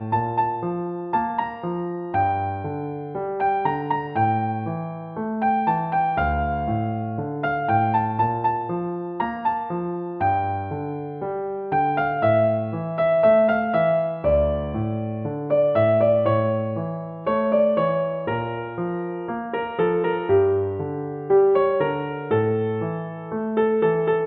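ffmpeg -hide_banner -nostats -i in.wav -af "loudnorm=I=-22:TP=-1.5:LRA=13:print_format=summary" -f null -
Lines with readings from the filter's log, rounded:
Input Integrated:    -22.7 LUFS
Input True Peak:      -7.8 dBTP
Input LRA:             4.5 LU
Input Threshold:     -32.7 LUFS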